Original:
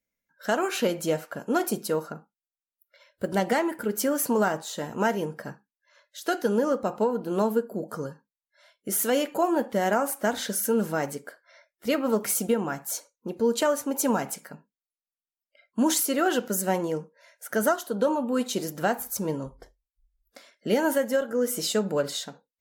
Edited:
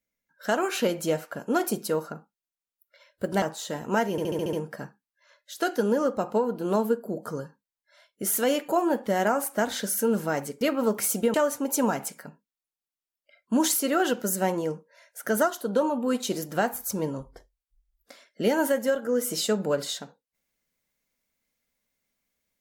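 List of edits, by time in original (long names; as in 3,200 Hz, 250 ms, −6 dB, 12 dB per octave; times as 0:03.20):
0:03.42–0:04.50: remove
0:05.19: stutter 0.07 s, 7 plays
0:11.27–0:11.87: remove
0:12.60–0:13.60: remove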